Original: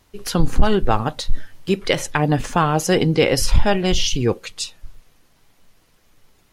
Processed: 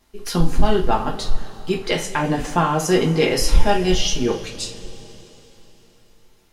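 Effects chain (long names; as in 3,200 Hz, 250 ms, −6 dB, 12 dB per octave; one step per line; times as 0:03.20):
coupled-rooms reverb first 0.27 s, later 3.8 s, from −21 dB, DRR −1.5 dB
level −5 dB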